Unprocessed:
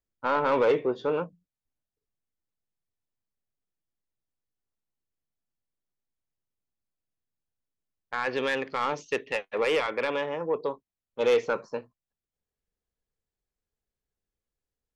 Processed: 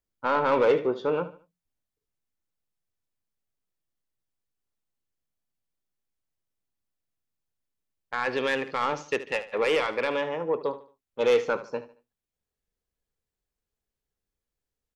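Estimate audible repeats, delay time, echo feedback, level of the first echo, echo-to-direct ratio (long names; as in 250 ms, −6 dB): 3, 74 ms, 33%, −14.5 dB, −14.0 dB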